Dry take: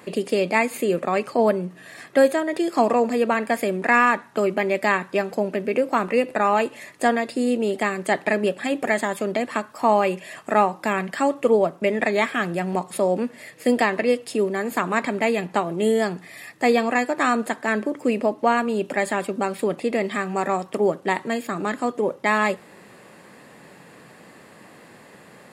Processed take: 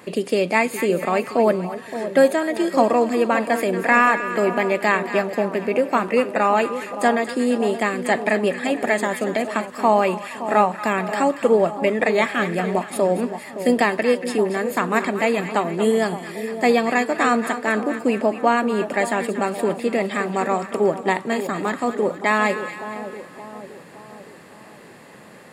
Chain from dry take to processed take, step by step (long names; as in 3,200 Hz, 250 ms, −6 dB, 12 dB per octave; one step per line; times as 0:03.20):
echo with a time of its own for lows and highs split 1,000 Hz, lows 569 ms, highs 232 ms, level −10.5 dB
level +1.5 dB